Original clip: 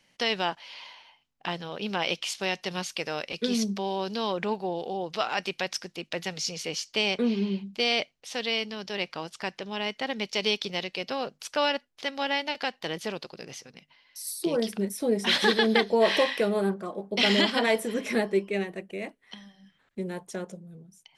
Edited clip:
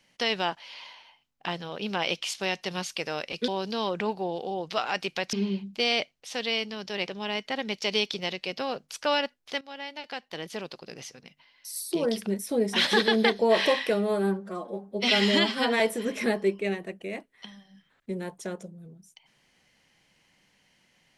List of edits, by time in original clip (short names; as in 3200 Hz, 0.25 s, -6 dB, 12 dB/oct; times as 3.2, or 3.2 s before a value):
3.48–3.91 cut
5.76–7.33 cut
9.08–9.59 cut
12.12–13.54 fade in, from -15.5 dB
16.45–17.69 stretch 1.5×